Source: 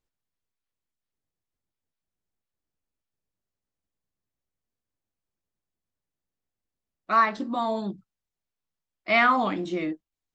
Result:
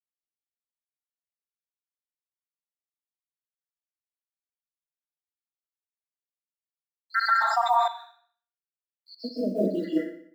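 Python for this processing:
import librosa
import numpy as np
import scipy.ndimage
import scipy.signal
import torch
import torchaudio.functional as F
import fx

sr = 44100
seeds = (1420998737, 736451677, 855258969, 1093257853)

p1 = fx.spec_dropout(x, sr, seeds[0], share_pct=84)
p2 = scipy.signal.sosfilt(scipy.signal.butter(16, 180.0, 'highpass', fs=sr, output='sos'), p1)
p3 = fx.quant_companded(p2, sr, bits=8)
p4 = p3 + fx.echo_feedback(p3, sr, ms=61, feedback_pct=49, wet_db=-11.5, dry=0)
p5 = fx.rev_plate(p4, sr, seeds[1], rt60_s=0.52, hf_ratio=0.75, predelay_ms=115, drr_db=-8.0)
y = fx.env_flatten(p5, sr, amount_pct=70, at=(7.14, 7.88))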